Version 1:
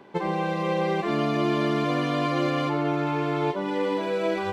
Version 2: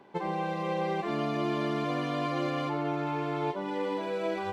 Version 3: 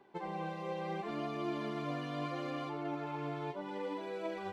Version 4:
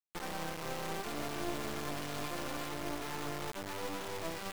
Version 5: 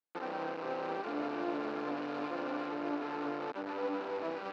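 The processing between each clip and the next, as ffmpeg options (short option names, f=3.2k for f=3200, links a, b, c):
-af "equalizer=f=810:w=2.7:g=3.5,volume=-6.5dB"
-af "flanger=delay=2.5:depth=5:regen=60:speed=0.73:shape=sinusoidal,volume=-4dB"
-af "acrusher=bits=4:dc=4:mix=0:aa=0.000001,volume=2.5dB"
-af "highpass=270,equalizer=f=280:t=q:w=4:g=10,equalizer=f=490:t=q:w=4:g=7,equalizer=f=830:t=q:w=4:g=4,equalizer=f=1.4k:t=q:w=4:g=4,equalizer=f=2k:t=q:w=4:g=-5,equalizer=f=3.3k:t=q:w=4:g=-9,lowpass=f=3.7k:w=0.5412,lowpass=f=3.7k:w=1.3066"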